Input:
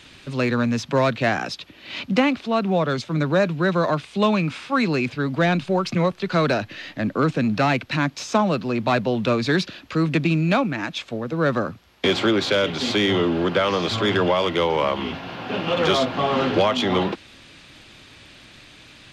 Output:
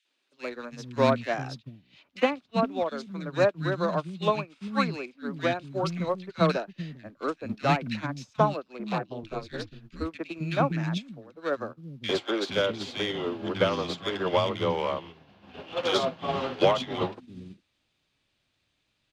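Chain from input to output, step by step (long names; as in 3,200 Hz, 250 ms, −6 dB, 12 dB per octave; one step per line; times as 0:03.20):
0:08.78–0:09.68: ring modulation 110 Hz
three-band delay without the direct sound highs, mids, lows 50/450 ms, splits 270/1,700 Hz
expander for the loud parts 2.5 to 1, over −35 dBFS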